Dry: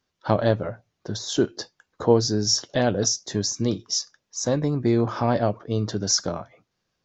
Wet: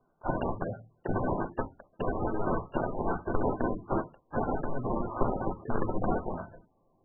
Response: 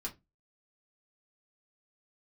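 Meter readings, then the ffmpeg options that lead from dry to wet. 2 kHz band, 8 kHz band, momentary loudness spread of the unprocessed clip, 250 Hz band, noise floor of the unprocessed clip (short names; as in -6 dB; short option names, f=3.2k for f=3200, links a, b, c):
-5.5 dB, n/a, 13 LU, -8.0 dB, -78 dBFS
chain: -filter_complex "[0:a]aeval=exprs='(mod(10.6*val(0)+1,2)-1)/10.6':c=same,highshelf=f=4.2k:g=11,bandreject=f=152:t=h:w=4,bandreject=f=304:t=h:w=4,bandreject=f=456:t=h:w=4,acompressor=threshold=-29dB:ratio=16,acrusher=samples=20:mix=1:aa=0.000001,acrossover=split=6300[a][b];[b]acompressor=threshold=-59dB:ratio=4:attack=1:release=60[c];[a][c]amix=inputs=2:normalize=0,asplit=2[d][e];[e]asuperstop=centerf=1800:order=20:qfactor=3.6[f];[1:a]atrim=start_sample=2205,highshelf=f=4.6k:g=-6.5[g];[f][g]afir=irnorm=-1:irlink=0,volume=-0.5dB[h];[d][h]amix=inputs=2:normalize=0" -ar 24000 -c:a libmp3lame -b:a 8k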